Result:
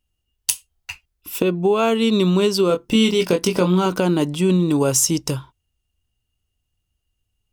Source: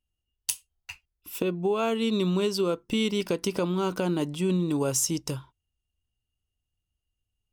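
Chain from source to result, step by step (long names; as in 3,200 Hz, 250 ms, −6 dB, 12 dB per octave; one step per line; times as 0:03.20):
0:02.68–0:03.86: double-tracking delay 22 ms −6 dB
level +8.5 dB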